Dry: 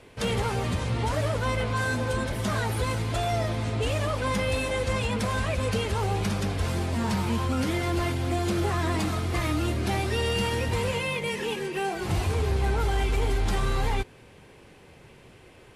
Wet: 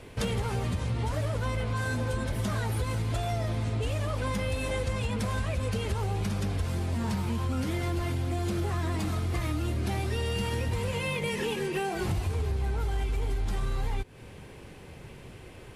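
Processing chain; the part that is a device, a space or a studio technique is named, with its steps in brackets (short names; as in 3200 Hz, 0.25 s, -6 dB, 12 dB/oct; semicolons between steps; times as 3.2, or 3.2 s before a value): ASMR close-microphone chain (low shelf 190 Hz +7 dB; compressor, threshold -29 dBFS, peak gain reduction 13 dB; high shelf 12000 Hz +6 dB); gain +2 dB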